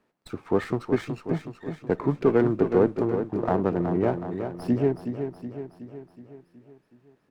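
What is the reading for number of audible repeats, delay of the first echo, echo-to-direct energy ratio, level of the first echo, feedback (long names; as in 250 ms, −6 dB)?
6, 371 ms, −6.5 dB, −8.0 dB, 55%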